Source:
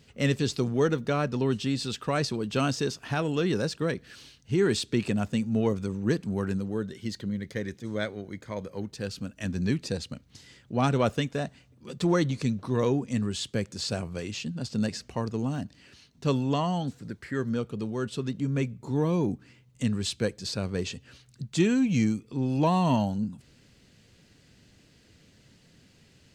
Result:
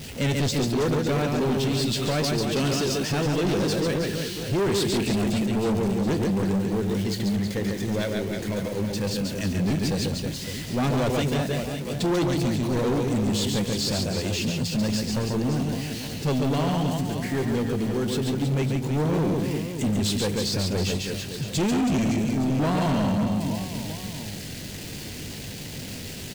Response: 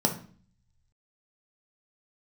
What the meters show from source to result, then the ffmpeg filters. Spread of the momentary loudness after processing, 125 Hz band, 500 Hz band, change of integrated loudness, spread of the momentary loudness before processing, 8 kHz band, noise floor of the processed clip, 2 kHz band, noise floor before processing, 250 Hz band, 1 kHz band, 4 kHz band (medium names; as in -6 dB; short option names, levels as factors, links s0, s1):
8 LU, +4.5 dB, +3.5 dB, +3.5 dB, 11 LU, +8.0 dB, -36 dBFS, +3.5 dB, -60 dBFS, +4.0 dB, +2.5 dB, +7.0 dB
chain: -filter_complex "[0:a]aeval=exprs='val(0)+0.5*0.015*sgn(val(0))':c=same,equalizer=f=1200:t=o:w=0.88:g=-7.5,asplit=2[s0][s1];[s1]adelay=20,volume=0.224[s2];[s0][s2]amix=inputs=2:normalize=0,aecho=1:1:140|322|558.6|866.2|1266:0.631|0.398|0.251|0.158|0.1,asoftclip=type=hard:threshold=0.0631,volume=1.5"